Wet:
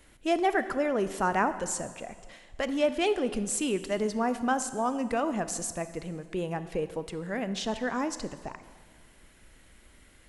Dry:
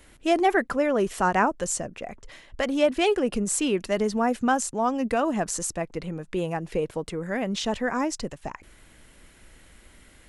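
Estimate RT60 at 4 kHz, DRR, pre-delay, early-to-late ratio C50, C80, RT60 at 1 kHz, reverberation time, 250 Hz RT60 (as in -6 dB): 1.4 s, 11.5 dB, 26 ms, 12.5 dB, 13.5 dB, 1.6 s, 1.6 s, 1.7 s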